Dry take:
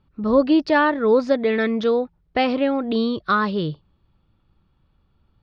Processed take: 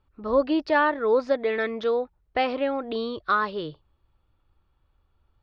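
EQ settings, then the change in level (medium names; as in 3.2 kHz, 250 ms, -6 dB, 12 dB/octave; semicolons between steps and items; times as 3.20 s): peaking EQ 180 Hz -14.5 dB 1.3 oct; treble shelf 3.5 kHz -8 dB; -1.5 dB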